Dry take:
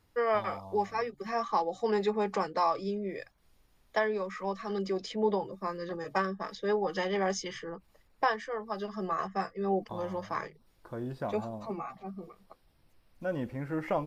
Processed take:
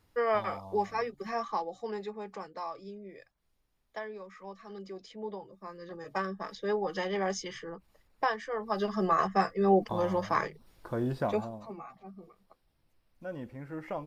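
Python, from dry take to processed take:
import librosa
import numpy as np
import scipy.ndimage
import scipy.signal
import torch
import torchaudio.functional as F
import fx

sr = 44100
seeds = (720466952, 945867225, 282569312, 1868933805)

y = fx.gain(x, sr, db=fx.line((1.22, 0.0), (2.15, -11.0), (5.54, -11.0), (6.35, -1.5), (8.38, -1.5), (8.83, 6.0), (11.18, 6.0), (11.71, -6.5)))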